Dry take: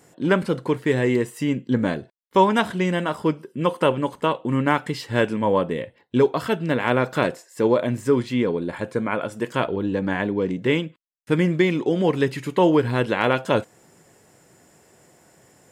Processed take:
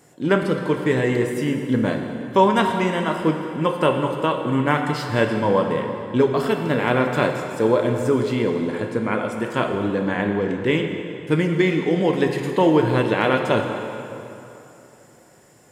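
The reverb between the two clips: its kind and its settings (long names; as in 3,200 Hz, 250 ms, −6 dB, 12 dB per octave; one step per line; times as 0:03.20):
dense smooth reverb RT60 3 s, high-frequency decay 0.75×, DRR 3.5 dB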